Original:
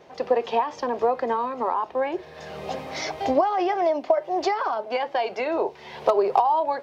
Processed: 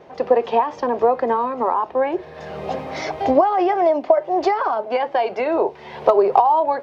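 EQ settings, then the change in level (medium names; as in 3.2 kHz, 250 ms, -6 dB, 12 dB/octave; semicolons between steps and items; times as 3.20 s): treble shelf 3 kHz -11.5 dB; +6.0 dB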